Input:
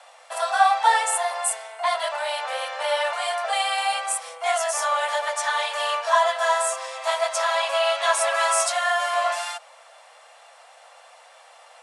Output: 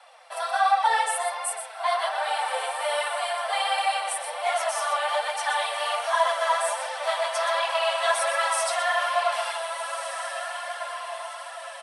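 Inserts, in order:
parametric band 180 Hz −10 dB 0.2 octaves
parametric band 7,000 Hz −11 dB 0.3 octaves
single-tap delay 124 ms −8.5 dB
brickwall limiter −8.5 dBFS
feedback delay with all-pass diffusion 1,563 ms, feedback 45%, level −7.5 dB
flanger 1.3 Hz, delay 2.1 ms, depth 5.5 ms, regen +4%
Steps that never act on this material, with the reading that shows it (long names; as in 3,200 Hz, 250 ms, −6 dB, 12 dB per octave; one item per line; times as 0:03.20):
parametric band 180 Hz: nothing at its input below 450 Hz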